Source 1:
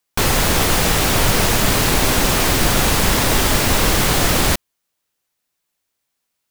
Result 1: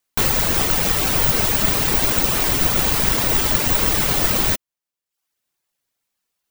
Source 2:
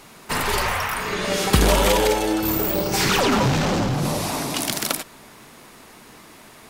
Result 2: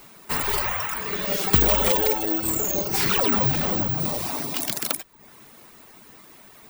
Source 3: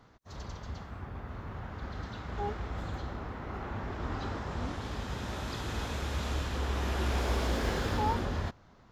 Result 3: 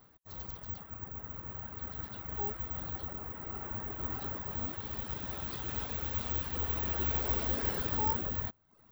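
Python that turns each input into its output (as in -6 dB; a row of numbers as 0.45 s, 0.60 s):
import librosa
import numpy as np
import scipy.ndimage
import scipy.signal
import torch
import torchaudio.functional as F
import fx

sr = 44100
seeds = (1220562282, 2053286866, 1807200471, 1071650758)

y = (np.kron(x[::2], np.eye(2)[0]) * 2)[:len(x)]
y = fx.dereverb_blind(y, sr, rt60_s=0.6)
y = F.gain(torch.from_numpy(y), -4.0).numpy()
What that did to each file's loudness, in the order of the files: -0.5 LU, -0.5 LU, +0.5 LU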